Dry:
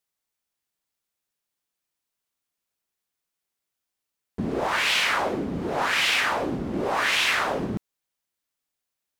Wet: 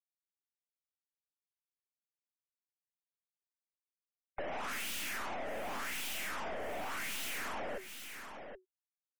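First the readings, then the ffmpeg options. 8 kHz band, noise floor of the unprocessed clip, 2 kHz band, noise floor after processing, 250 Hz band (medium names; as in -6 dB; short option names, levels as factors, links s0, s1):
-9.0 dB, -85 dBFS, -16.0 dB, under -85 dBFS, -20.0 dB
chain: -filter_complex "[0:a]acrossover=split=300|6500[s0][s1][s2];[s1]alimiter=limit=0.0891:level=0:latency=1:release=39[s3];[s0][s3][s2]amix=inputs=3:normalize=0,afreqshift=370,highshelf=f=3200:g=7,asplit=2[s4][s5];[s5]acrusher=bits=4:dc=4:mix=0:aa=0.000001,volume=0.562[s6];[s4][s6]amix=inputs=2:normalize=0,aeval=exprs='(tanh(89.1*val(0)+0.4)-tanh(0.4))/89.1':c=same,equalizer=f=125:t=o:w=1:g=-7,equalizer=f=250:t=o:w=1:g=7,equalizer=f=500:t=o:w=1:g=-5,equalizer=f=1000:t=o:w=1:g=-5,equalizer=f=4000:t=o:w=1:g=-8,equalizer=f=8000:t=o:w=1:g=-3,afftfilt=real='re*gte(hypot(re,im),0.002)':imag='im*gte(hypot(re,im),0.002)':win_size=1024:overlap=0.75,aecho=1:1:773:0.188,acompressor=threshold=0.00447:ratio=6,volume=3.35"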